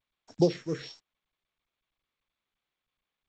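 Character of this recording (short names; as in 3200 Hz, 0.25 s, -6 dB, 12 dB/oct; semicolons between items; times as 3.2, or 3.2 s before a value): a buzz of ramps at a fixed pitch in blocks of 8 samples; phasing stages 4, 1.1 Hz, lowest notch 740–3100 Hz; a quantiser's noise floor 10-bit, dither none; G.722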